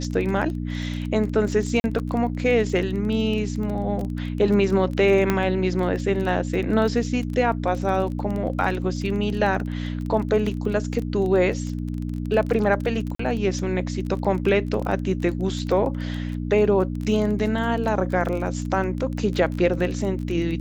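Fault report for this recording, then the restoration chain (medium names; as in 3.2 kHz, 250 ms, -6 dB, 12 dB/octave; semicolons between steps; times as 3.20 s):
crackle 20 per s -28 dBFS
hum 60 Hz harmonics 5 -28 dBFS
1.80–1.84 s: dropout 41 ms
5.30 s: pop -7 dBFS
13.15–13.19 s: dropout 44 ms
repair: de-click; de-hum 60 Hz, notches 5; interpolate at 1.80 s, 41 ms; interpolate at 13.15 s, 44 ms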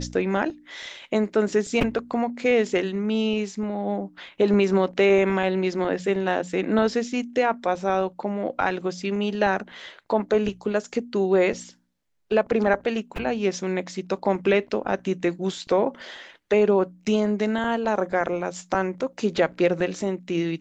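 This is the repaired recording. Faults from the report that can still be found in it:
nothing left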